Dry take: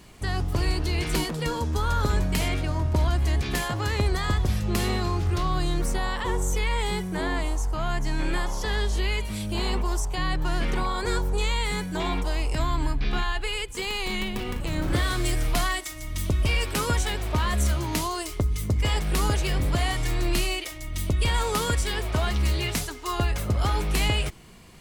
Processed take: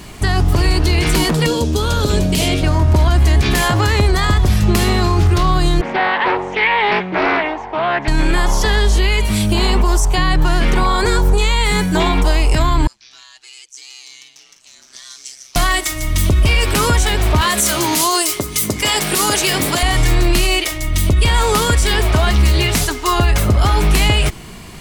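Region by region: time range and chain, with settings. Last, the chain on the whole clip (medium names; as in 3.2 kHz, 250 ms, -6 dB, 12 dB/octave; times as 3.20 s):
1.46–2.63 s: high-pass 150 Hz 6 dB/octave + high-order bell 1.3 kHz -10 dB + loudspeaker Doppler distortion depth 0.13 ms
5.81–8.08 s: cabinet simulation 320–3000 Hz, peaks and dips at 460 Hz -4 dB, 820 Hz +4 dB, 1.3 kHz -7 dB, 2.1 kHz +5 dB + loudspeaker Doppler distortion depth 0.38 ms
12.87–15.56 s: band-pass filter 5.9 kHz, Q 6.9 + ring modulator 65 Hz
17.41–19.83 s: high-pass 230 Hz + treble shelf 3.9 kHz +9 dB
whole clip: band-stop 510 Hz, Q 12; loudness maximiser +19.5 dB; trim -4.5 dB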